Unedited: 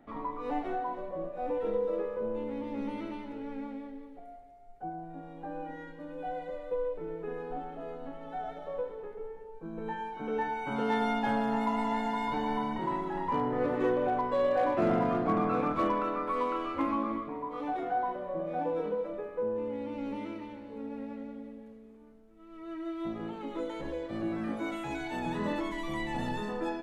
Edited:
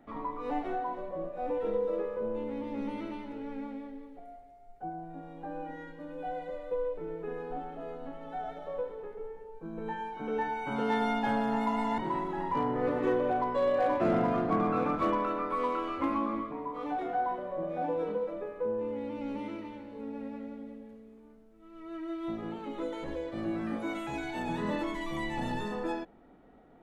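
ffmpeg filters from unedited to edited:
-filter_complex "[0:a]asplit=2[s0][s1];[s0]atrim=end=11.982[s2];[s1]atrim=start=12.748[s3];[s2][s3]acrossfade=d=0.004:c1=hsin:c2=hsin"

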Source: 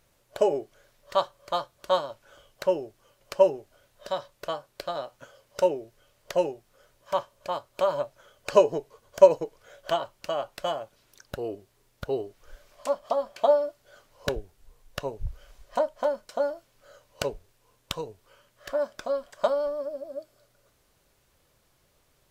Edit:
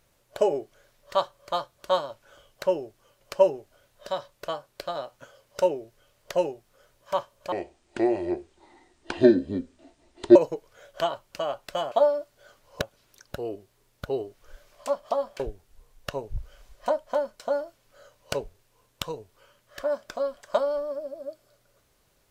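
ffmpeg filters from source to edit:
-filter_complex "[0:a]asplit=6[s0][s1][s2][s3][s4][s5];[s0]atrim=end=7.524[s6];[s1]atrim=start=7.52:end=9.25,asetpts=PTS-STARTPTS,asetrate=26901,aresample=44100,atrim=end_sample=125070,asetpts=PTS-STARTPTS[s7];[s2]atrim=start=9.246:end=10.812[s8];[s3]atrim=start=13.388:end=14.292[s9];[s4]atrim=start=10.808:end=13.392[s10];[s5]atrim=start=14.288[s11];[s6][s7]acrossfade=d=0.004:c1=hsin:c2=hsin[s12];[s12][s8]acrossfade=d=0.004:c1=hsin:c2=hsin[s13];[s13][s9]acrossfade=d=0.004:c1=hsin:c2=hsin[s14];[s14][s10]acrossfade=d=0.004:c1=hsin:c2=hsin[s15];[s15][s11]acrossfade=d=0.004:c1=hsin:c2=hsin"

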